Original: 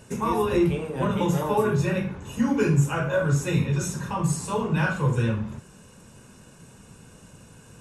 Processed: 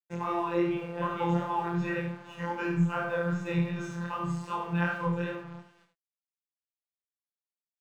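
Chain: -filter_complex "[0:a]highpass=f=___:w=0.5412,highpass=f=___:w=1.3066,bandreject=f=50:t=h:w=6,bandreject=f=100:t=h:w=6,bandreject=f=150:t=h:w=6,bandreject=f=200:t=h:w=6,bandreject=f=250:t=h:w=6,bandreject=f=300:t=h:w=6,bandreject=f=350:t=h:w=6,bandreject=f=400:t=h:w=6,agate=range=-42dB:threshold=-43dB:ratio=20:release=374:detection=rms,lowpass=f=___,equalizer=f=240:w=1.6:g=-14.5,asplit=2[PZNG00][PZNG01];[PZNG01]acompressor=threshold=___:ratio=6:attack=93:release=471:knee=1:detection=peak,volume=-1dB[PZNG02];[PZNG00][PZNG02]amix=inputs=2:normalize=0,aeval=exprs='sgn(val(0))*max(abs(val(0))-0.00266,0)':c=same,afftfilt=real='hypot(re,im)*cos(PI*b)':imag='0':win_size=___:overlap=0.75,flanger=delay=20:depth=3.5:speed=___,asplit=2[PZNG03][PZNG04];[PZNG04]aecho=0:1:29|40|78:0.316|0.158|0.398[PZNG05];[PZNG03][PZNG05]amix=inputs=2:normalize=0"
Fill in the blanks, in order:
120, 120, 2.7k, -36dB, 1024, 2.6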